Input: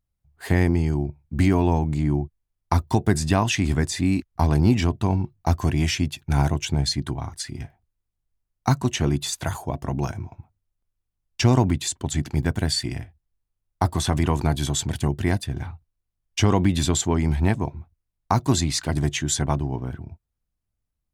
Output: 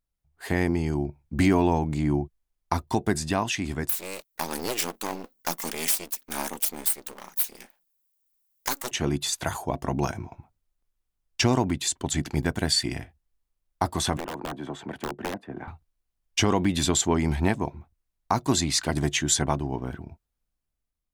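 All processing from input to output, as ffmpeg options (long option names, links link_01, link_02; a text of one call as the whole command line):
ffmpeg -i in.wav -filter_complex "[0:a]asettb=1/sr,asplit=3[link_01][link_02][link_03];[link_01]atrim=end=3.894[link_04];[link_02]atrim=start=3.89:end=8.91,asetpts=PTS-STARTPTS,afade=type=in:duration=0.004:curve=qsin,afade=type=out:start_time=5.016:duration=0.004:curve=qsin,aeval=exprs='abs(val(0))':channel_layout=same,aemphasis=mode=production:type=riaa[link_05];[link_03]atrim=start=8.906[link_06];[link_04][link_05]acrossfade=duration=0.004:curve1=hsin:curve2=qsin[link_07];[link_07][link_06]acrossfade=duration=0.004:curve1=qsin:curve2=hsin,asettb=1/sr,asplit=3[link_08][link_09][link_10];[link_08]atrim=end=14.174[link_11];[link_09]atrim=start=14.17:end=15.68,asetpts=PTS-STARTPTS,afade=type=in:duration=0.004:curve=qsin,afade=type=out:start_time=1.506:duration=0.004:curve=qsin,acrossover=split=180 2200:gain=0.0794 1 0.0708[link_12][link_13][link_14];[link_12][link_13][link_14]amix=inputs=3:normalize=0,aeval=exprs='(mod(7.94*val(0)+1,2)-1)/7.94':channel_layout=same,acrossover=split=110|1300|3900[link_15][link_16][link_17][link_18];[link_15]acompressor=threshold=-44dB:ratio=3[link_19];[link_16]acompressor=threshold=-32dB:ratio=3[link_20];[link_17]acompressor=threshold=-47dB:ratio=3[link_21];[link_18]acompressor=threshold=-51dB:ratio=3[link_22];[link_19][link_20][link_21][link_22]amix=inputs=4:normalize=0[link_23];[link_10]atrim=start=15.676[link_24];[link_11][link_23]acrossfade=duration=0.004:curve1=hsin:curve2=qsin[link_25];[link_25][link_24]acrossfade=duration=0.004:curve1=qsin:curve2=hsin,equalizer=frequency=98:width=0.89:gain=-9,dynaudnorm=framelen=250:gausssize=7:maxgain=6dB,alimiter=limit=-6.5dB:level=0:latency=1:release=487,volume=-2.5dB" out.wav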